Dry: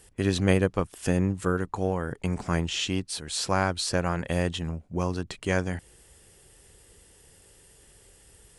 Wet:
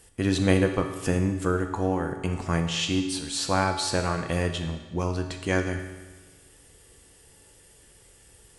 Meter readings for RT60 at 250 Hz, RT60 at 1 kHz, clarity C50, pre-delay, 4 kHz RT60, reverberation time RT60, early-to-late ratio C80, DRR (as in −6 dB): 1.3 s, 1.3 s, 7.0 dB, 3 ms, 1.2 s, 1.3 s, 9.0 dB, 4.0 dB